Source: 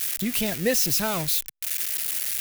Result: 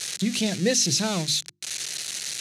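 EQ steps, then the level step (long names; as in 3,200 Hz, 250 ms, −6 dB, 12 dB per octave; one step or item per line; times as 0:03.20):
dynamic equaliser 1,200 Hz, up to −4 dB, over −41 dBFS, Q 1.1
loudspeaker in its box 120–8,900 Hz, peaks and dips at 130 Hz +8 dB, 190 Hz +7 dB, 340 Hz +4 dB, 4,100 Hz +8 dB, 6,200 Hz +6 dB
mains-hum notches 50/100/150/200/250/300/350 Hz
0.0 dB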